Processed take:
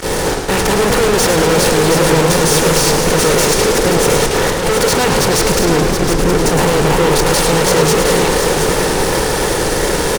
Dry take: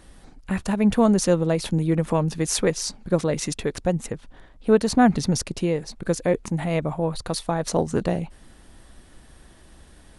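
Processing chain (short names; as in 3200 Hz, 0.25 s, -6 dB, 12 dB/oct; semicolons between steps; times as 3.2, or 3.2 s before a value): per-bin compression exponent 0.4; comb 2.2 ms, depth 71%; gate -24 dBFS, range -15 dB; 5.59–6.35 inverse Chebyshev low-pass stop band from 990 Hz, stop band 50 dB; fuzz box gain 33 dB, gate -38 dBFS; on a send: echo 0.72 s -6 dB; on the sum: warbling echo 0.107 s, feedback 74%, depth 192 cents, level -7 dB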